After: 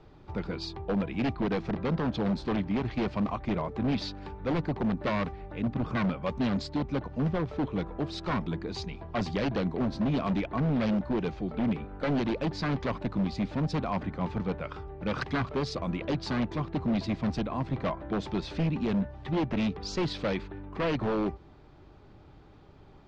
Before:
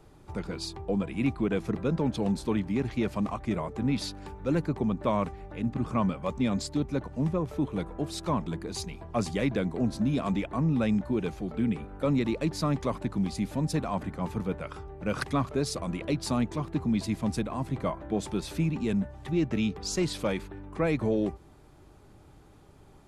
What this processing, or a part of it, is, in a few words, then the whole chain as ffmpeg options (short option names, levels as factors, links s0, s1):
synthesiser wavefolder: -af "aeval=exprs='0.0708*(abs(mod(val(0)/0.0708+3,4)-2)-1)':c=same,lowpass=f=4800:w=0.5412,lowpass=f=4800:w=1.3066,volume=1.12"